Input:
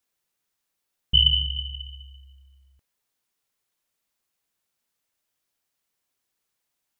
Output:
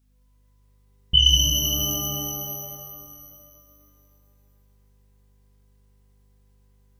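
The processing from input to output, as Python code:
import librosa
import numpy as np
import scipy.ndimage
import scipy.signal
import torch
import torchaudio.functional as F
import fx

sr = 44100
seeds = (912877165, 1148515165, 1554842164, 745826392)

y = fx.add_hum(x, sr, base_hz=50, snr_db=34)
y = fx.rev_shimmer(y, sr, seeds[0], rt60_s=2.4, semitones=12, shimmer_db=-2, drr_db=0.5)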